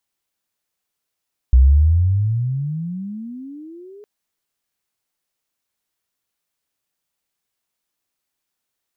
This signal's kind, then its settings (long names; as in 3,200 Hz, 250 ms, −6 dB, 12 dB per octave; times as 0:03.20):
pitch glide with a swell sine, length 2.51 s, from 61 Hz, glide +33.5 semitones, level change −32 dB, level −6 dB